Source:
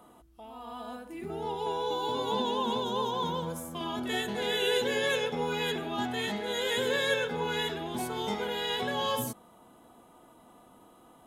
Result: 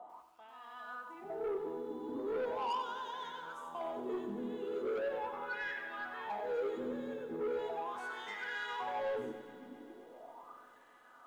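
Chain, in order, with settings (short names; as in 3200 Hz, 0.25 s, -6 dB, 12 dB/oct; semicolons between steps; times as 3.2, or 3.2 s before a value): bell 6900 Hz +8 dB 0.84 oct; in parallel at +2 dB: compressor, threshold -44 dBFS, peak gain reduction 19.5 dB; on the sum: wah 0.39 Hz 260–1800 Hz, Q 7; soft clip -38.5 dBFS, distortion -10 dB; 4.99–6.3 air absorption 220 m; multi-head echo 0.133 s, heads all three, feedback 68%, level -24 dB; on a send at -21.5 dB: reverb RT60 2.8 s, pre-delay 65 ms; on the sum: lo-fi delay 94 ms, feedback 55%, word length 12-bit, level -9.5 dB; gain +5.5 dB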